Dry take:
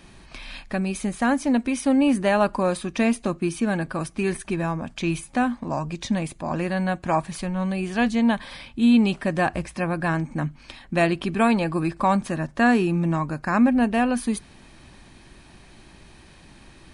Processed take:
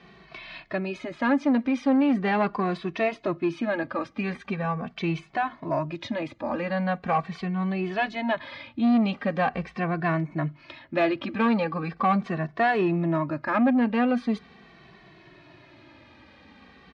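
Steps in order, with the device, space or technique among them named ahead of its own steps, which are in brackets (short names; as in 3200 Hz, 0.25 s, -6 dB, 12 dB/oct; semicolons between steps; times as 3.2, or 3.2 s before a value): barber-pole flanger into a guitar amplifier (endless flanger 2.2 ms -0.41 Hz; soft clip -17.5 dBFS, distortion -15 dB; speaker cabinet 100–4400 Hz, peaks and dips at 300 Hz +3 dB, 440 Hz +3 dB, 640 Hz +5 dB, 1200 Hz +5 dB, 2000 Hz +5 dB)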